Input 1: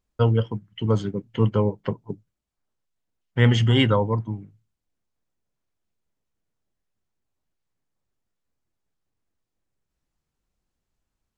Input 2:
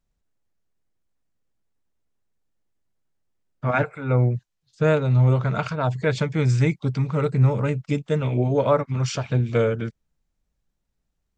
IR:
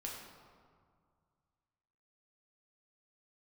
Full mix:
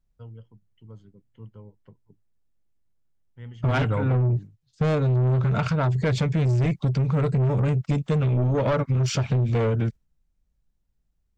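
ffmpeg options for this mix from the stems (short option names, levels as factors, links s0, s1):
-filter_complex "[0:a]volume=0.531[s0];[1:a]agate=range=0.355:threshold=0.0141:ratio=16:detection=peak,acontrast=37,volume=0.841,asplit=2[s1][s2];[s2]apad=whole_len=501722[s3];[s0][s3]sidechaingate=range=0.0631:threshold=0.00631:ratio=16:detection=peak[s4];[s4][s1]amix=inputs=2:normalize=0,lowshelf=f=180:g=10.5,asoftclip=type=tanh:threshold=0.211,acompressor=threshold=0.1:ratio=6"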